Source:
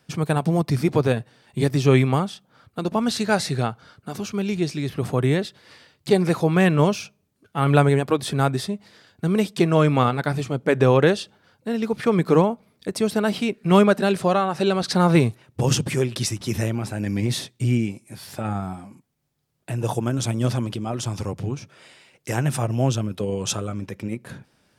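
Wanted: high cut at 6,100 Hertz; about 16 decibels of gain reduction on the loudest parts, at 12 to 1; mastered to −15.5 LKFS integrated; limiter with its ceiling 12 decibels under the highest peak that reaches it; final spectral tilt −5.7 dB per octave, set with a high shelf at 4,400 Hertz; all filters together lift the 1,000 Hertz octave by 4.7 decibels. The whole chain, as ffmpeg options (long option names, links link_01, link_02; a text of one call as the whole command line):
ffmpeg -i in.wav -af "lowpass=6100,equalizer=frequency=1000:width_type=o:gain=6.5,highshelf=frequency=4400:gain=-6,acompressor=threshold=-26dB:ratio=12,volume=21dB,alimiter=limit=-5dB:level=0:latency=1" out.wav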